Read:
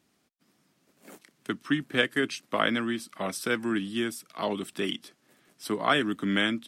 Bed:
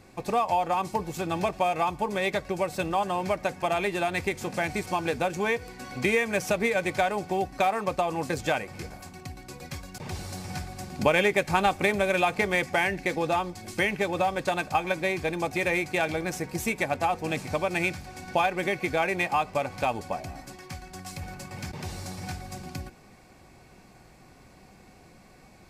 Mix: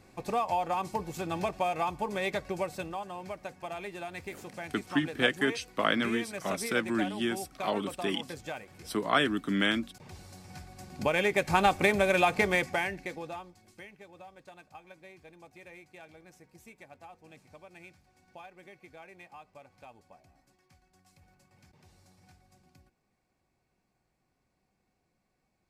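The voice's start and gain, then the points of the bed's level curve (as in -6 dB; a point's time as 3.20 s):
3.25 s, -1.5 dB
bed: 2.61 s -4.5 dB
3.04 s -12.5 dB
10.47 s -12.5 dB
11.62 s -0.5 dB
12.49 s -0.5 dB
13.92 s -24.5 dB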